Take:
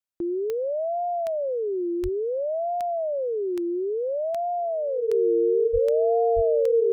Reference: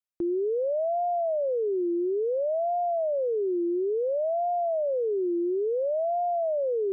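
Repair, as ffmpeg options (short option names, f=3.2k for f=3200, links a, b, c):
-filter_complex "[0:a]adeclick=t=4,bandreject=f=460:w=30,asplit=3[a][b][c];[a]afade=t=out:st=2.02:d=0.02[d];[b]highpass=f=140:w=0.5412,highpass=f=140:w=1.3066,afade=t=in:st=2.02:d=0.02,afade=t=out:st=2.14:d=0.02[e];[c]afade=t=in:st=2.14:d=0.02[f];[d][e][f]amix=inputs=3:normalize=0,asplit=3[g][h][i];[g]afade=t=out:st=5.72:d=0.02[j];[h]highpass=f=140:w=0.5412,highpass=f=140:w=1.3066,afade=t=in:st=5.72:d=0.02,afade=t=out:st=5.84:d=0.02[k];[i]afade=t=in:st=5.84:d=0.02[l];[j][k][l]amix=inputs=3:normalize=0,asplit=3[m][n][o];[m]afade=t=out:st=6.35:d=0.02[p];[n]highpass=f=140:w=0.5412,highpass=f=140:w=1.3066,afade=t=in:st=6.35:d=0.02,afade=t=out:st=6.47:d=0.02[q];[o]afade=t=in:st=6.47:d=0.02[r];[p][q][r]amix=inputs=3:normalize=0"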